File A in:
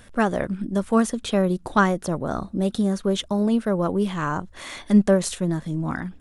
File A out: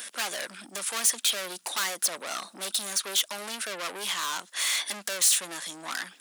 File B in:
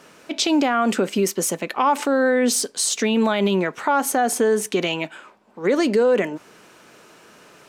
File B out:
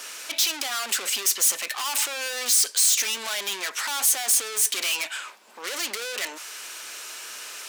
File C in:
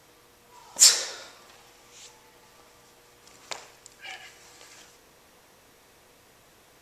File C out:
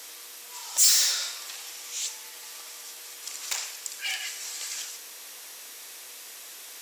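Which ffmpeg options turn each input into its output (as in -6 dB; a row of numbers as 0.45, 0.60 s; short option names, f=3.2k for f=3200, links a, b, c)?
-filter_complex "[0:a]asplit=2[a][b];[b]highpass=f=720:p=1,volume=36dB,asoftclip=type=tanh:threshold=-1dB[c];[a][c]amix=inputs=2:normalize=0,lowpass=f=5.6k:p=1,volume=-6dB,aderivative,acrossover=split=440[d][e];[d]acompressor=mode=upward:threshold=-45dB:ratio=2.5[f];[f][e]amix=inputs=2:normalize=0,highpass=f=170:w=0.5412,highpass=f=170:w=1.3066,volume=-7.5dB"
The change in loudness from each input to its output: -4.5, -2.5, -8.0 LU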